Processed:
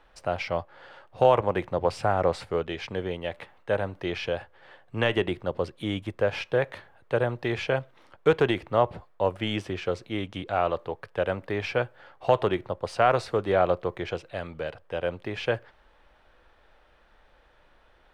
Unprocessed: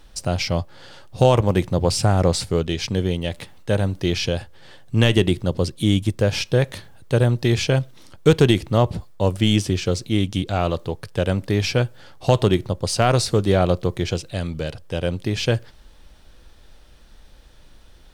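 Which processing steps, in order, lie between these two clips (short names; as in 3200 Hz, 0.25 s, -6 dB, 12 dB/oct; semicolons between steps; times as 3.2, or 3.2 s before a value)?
three-band isolator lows -15 dB, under 450 Hz, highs -22 dB, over 2500 Hz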